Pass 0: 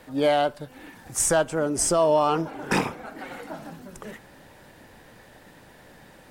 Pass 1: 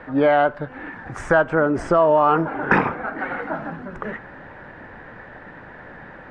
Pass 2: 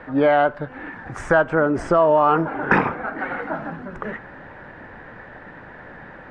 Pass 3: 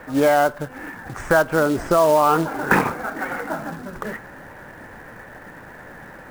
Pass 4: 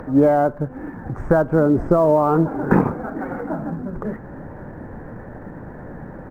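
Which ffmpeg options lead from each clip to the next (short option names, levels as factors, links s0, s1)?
-af "acompressor=threshold=0.0631:ratio=2.5,lowpass=f=1600:t=q:w=2.1,volume=2.51"
-af anull
-af "acrusher=bits=4:mode=log:mix=0:aa=0.000001"
-filter_complex "[0:a]firequalizer=gain_entry='entry(160,0);entry(650,-8);entry(2800,-28)':delay=0.05:min_phase=1,asplit=2[s0][s1];[s1]acompressor=mode=upward:threshold=0.0282:ratio=2.5,volume=0.794[s2];[s0][s2]amix=inputs=2:normalize=0,volume=1.33"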